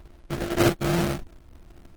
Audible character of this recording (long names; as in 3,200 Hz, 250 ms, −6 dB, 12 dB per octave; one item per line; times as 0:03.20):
a buzz of ramps at a fixed pitch in blocks of 128 samples
phaser sweep stages 2, 1.8 Hz, lowest notch 670–1,700 Hz
aliases and images of a low sample rate 1,000 Hz, jitter 20%
Opus